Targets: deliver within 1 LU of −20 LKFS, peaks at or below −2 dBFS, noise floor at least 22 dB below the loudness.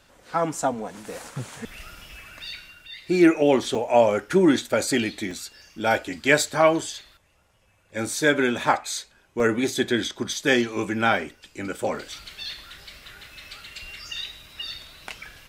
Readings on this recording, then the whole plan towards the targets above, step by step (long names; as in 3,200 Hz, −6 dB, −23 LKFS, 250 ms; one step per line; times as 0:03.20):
number of dropouts 4; longest dropout 2.5 ms; integrated loudness −23.5 LKFS; sample peak −4.0 dBFS; target loudness −20.0 LKFS
→ repair the gap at 0:00.88/0:03.75/0:05.31/0:09.40, 2.5 ms
level +3.5 dB
brickwall limiter −2 dBFS